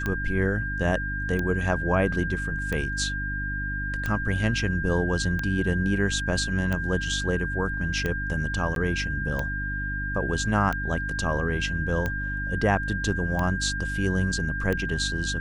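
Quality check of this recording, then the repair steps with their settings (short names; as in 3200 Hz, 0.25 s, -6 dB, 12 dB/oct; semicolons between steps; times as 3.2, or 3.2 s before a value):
hum 50 Hz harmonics 6 -32 dBFS
tick 45 rpm -15 dBFS
tone 1600 Hz -30 dBFS
8.75–8.76 gap 12 ms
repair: de-click; de-hum 50 Hz, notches 6; notch 1600 Hz, Q 30; interpolate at 8.75, 12 ms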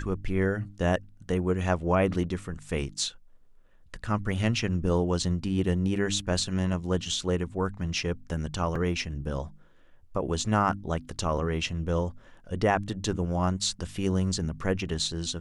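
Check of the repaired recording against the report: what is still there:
none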